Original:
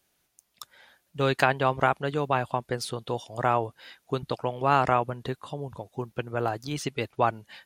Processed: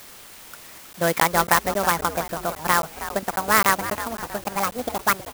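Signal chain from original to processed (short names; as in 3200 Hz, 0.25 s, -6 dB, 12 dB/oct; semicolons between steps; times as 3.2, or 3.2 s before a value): speed glide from 112% -> 175%; LPF 2700 Hz 12 dB/oct; low shelf 380 Hz -6 dB; requantised 8-bit, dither triangular; frequency-shifting echo 0.319 s, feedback 46%, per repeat -120 Hz, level -12 dB; crackling interface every 0.27 s, samples 512, zero, from 0.93; clock jitter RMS 0.06 ms; gain +6 dB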